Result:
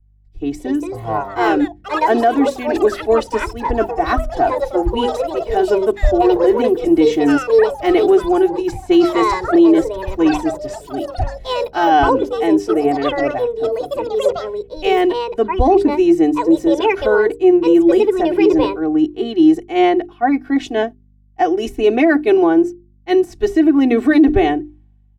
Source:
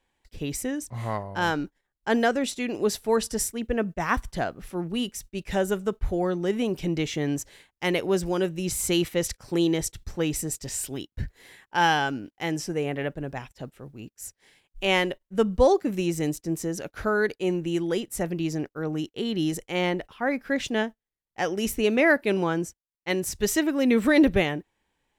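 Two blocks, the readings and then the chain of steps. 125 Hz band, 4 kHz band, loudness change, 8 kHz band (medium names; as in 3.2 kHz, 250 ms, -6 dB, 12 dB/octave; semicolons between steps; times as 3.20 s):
+2.0 dB, +3.0 dB, +11.0 dB, no reading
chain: hum notches 50/100/150/200/250/300/350/400 Hz; de-esser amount 65%; low-pass 3.4 kHz 6 dB/octave; comb 2.7 ms, depth 96%; small resonant body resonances 310/710 Hz, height 11 dB, ringing for 20 ms; hum 50 Hz, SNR 29 dB; ever faster or slower copies 342 ms, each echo +5 st, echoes 3, each echo -6 dB; loudness maximiser +6.5 dB; three bands expanded up and down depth 70%; trim -4 dB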